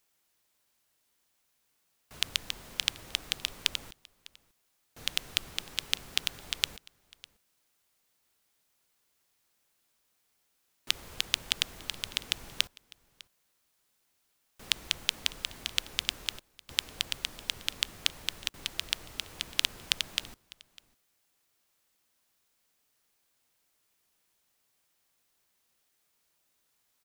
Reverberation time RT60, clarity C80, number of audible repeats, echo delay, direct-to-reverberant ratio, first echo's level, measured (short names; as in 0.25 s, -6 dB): none, none, 1, 0.602 s, none, -22.5 dB